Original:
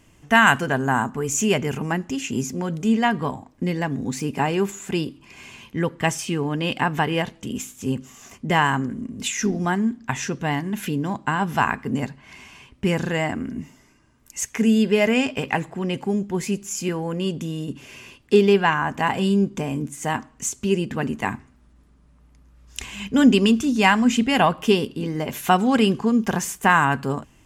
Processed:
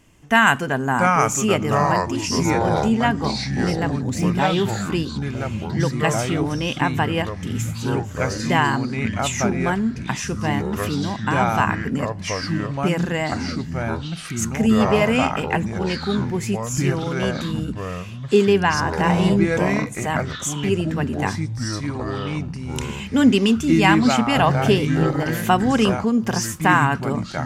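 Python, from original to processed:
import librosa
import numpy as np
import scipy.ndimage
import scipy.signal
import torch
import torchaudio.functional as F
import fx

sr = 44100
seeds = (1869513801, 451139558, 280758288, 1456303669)

y = fx.echo_pitch(x, sr, ms=602, semitones=-4, count=3, db_per_echo=-3.0)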